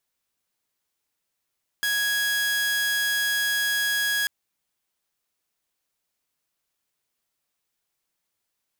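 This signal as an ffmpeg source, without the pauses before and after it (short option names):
-f lavfi -i "aevalsrc='0.106*(2*mod(1660*t,1)-1)':d=2.44:s=44100"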